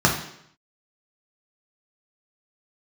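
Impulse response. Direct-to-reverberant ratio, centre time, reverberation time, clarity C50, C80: −1.5 dB, 26 ms, 0.70 s, 6.5 dB, 10.0 dB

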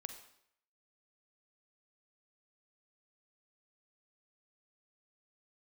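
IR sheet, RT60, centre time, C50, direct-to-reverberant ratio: 0.70 s, 15 ms, 8.5 dB, 7.0 dB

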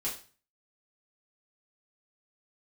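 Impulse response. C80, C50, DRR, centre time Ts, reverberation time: 13.0 dB, 8.5 dB, −7.0 dB, 26 ms, 0.40 s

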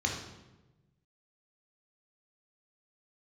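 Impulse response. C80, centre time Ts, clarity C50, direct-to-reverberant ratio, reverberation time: 6.5 dB, 42 ms, 3.5 dB, −1.5 dB, 1.1 s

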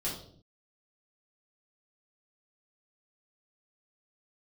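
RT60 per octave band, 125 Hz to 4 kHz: 0.85, 0.80, 0.65, 0.50, 0.40, 0.50 seconds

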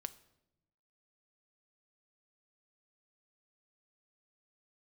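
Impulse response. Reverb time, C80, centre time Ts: 0.90 s, 20.0 dB, 4 ms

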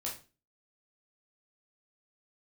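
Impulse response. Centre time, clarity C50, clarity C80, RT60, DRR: 26 ms, 8.0 dB, 14.0 dB, 0.35 s, −4.0 dB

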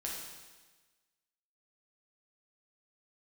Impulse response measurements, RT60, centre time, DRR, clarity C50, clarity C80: 1.3 s, 69 ms, −4.0 dB, 1.0 dB, 3.5 dB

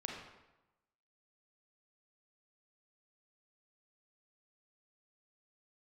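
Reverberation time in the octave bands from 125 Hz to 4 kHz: 1.1, 1.0, 0.95, 1.0, 0.85, 0.75 seconds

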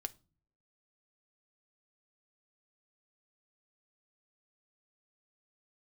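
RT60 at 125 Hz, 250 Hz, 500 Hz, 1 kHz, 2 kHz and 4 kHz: 0.80, 0.70, 0.40, 0.35, 0.25, 0.30 seconds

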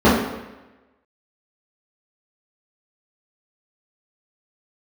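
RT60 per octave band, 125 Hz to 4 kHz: 0.95, 1.0, 1.0, 1.1, 1.1, 0.90 seconds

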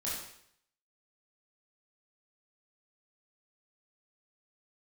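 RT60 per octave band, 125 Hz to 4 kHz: 0.70, 0.65, 0.70, 0.65, 0.70, 0.65 seconds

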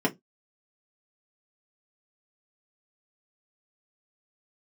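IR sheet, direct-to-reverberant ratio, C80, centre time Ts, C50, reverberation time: −3.0 dB, 32.0 dB, 10 ms, 23.0 dB, 0.15 s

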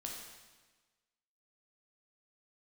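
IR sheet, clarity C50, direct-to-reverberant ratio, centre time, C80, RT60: 2.0 dB, −1.0 dB, 61 ms, 4.0 dB, 1.3 s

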